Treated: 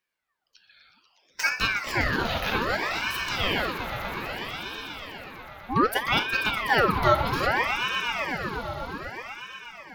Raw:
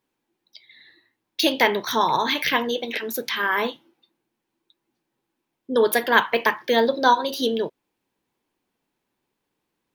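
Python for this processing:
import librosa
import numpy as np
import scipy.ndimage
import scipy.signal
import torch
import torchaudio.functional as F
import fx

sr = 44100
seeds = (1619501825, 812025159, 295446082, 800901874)

y = fx.hpss(x, sr, part='percussive', gain_db=-8)
y = fx.echo_swell(y, sr, ms=122, loudest=5, wet_db=-12.0)
y = fx.ring_lfo(y, sr, carrier_hz=1200.0, swing_pct=70, hz=0.63)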